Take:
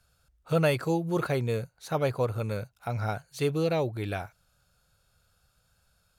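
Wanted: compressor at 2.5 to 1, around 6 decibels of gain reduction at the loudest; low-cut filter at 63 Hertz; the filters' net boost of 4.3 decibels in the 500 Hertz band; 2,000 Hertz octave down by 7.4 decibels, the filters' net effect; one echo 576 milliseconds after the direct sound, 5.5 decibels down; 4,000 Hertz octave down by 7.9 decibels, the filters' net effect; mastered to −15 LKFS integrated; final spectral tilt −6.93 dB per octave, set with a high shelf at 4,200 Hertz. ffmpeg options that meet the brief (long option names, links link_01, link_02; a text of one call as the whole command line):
ffmpeg -i in.wav -af "highpass=63,equalizer=frequency=500:width_type=o:gain=5.5,equalizer=frequency=2000:width_type=o:gain=-8.5,equalizer=frequency=4000:width_type=o:gain=-3.5,highshelf=frequency=4200:gain=-6.5,acompressor=threshold=-27dB:ratio=2.5,aecho=1:1:576:0.531,volume=16dB" out.wav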